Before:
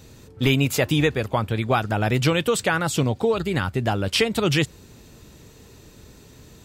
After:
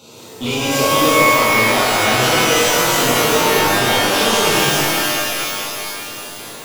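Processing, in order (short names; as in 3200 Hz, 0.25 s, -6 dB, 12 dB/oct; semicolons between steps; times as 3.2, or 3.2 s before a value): HPF 110 Hz 24 dB/oct; overdrive pedal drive 27 dB, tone 4700 Hz, clips at -5.5 dBFS; Butterworth band-stop 1800 Hz, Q 1.8; delay with a stepping band-pass 0.396 s, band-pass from 980 Hz, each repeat 1.4 oct, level -5.5 dB; shimmer reverb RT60 2.6 s, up +12 st, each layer -2 dB, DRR -9 dB; gain -12.5 dB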